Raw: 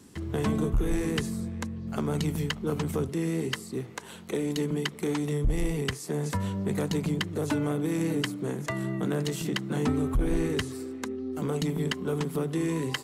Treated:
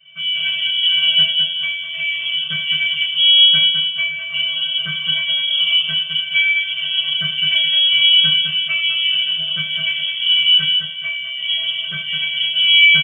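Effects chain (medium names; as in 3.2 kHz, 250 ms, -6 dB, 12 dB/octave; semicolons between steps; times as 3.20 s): high-pass 68 Hz 12 dB/octave; peaking EQ 150 Hz +14 dB 1.5 oct; hum notches 50/100/150 Hz; in parallel at +2 dB: peak limiter -16.5 dBFS, peak gain reduction 8 dB; on the sum: saturation -7.5 dBFS, distortion -22 dB; inharmonic resonator 320 Hz, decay 0.34 s, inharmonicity 0.008; small resonant body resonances 500/1000 Hz, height 17 dB, ringing for 85 ms; on a send: feedback delay 209 ms, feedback 28%, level -6 dB; on the sum: simulated room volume 37 m³, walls mixed, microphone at 1.8 m; frequency inversion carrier 3.3 kHz; trim +2.5 dB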